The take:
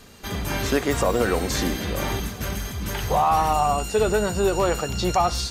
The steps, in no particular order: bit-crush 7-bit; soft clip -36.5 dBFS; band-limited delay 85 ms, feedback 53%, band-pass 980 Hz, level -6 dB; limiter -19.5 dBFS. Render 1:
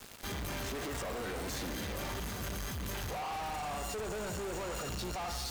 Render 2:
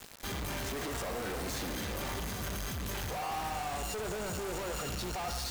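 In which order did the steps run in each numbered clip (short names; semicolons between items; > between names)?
bit-crush > limiter > band-limited delay > soft clip; limiter > soft clip > bit-crush > band-limited delay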